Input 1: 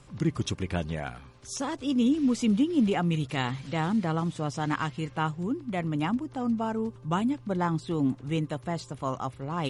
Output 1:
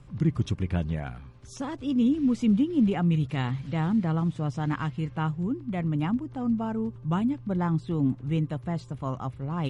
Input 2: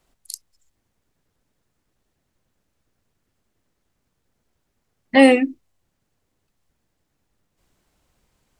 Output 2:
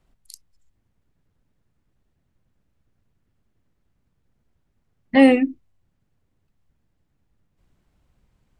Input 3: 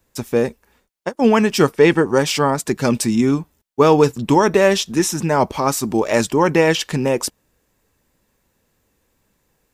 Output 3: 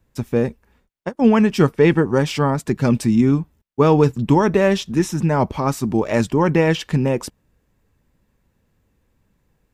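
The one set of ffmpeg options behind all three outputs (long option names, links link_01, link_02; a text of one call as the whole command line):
ffmpeg -i in.wav -af "bass=frequency=250:gain=9,treble=frequency=4000:gain=-7,volume=-3.5dB" out.wav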